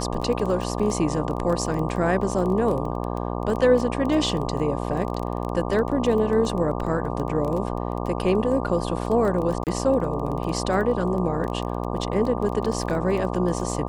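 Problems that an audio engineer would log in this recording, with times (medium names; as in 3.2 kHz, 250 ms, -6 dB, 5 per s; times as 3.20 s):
buzz 60 Hz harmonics 20 -28 dBFS
crackle 14 per s -27 dBFS
9.64–9.67 s: dropout 28 ms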